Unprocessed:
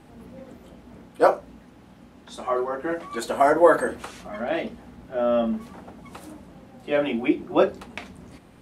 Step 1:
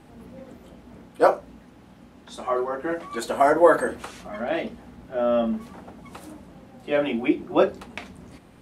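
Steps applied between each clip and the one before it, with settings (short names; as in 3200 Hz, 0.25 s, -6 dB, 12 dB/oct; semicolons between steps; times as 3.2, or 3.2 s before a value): nothing audible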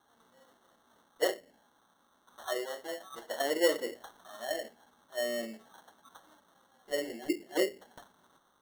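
auto-wah 400–1200 Hz, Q 2.5, down, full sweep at -18 dBFS; sample-and-hold 18×; gain -6.5 dB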